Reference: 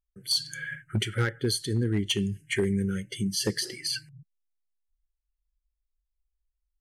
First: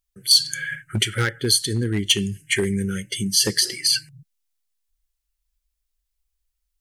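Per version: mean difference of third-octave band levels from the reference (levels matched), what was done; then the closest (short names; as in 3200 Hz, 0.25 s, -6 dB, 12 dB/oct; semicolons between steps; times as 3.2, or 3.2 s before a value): 3.0 dB: high shelf 2000 Hz +10 dB; gain +3 dB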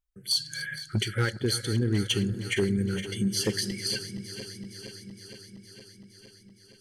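6.5 dB: regenerating reverse delay 0.232 s, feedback 83%, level -13 dB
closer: first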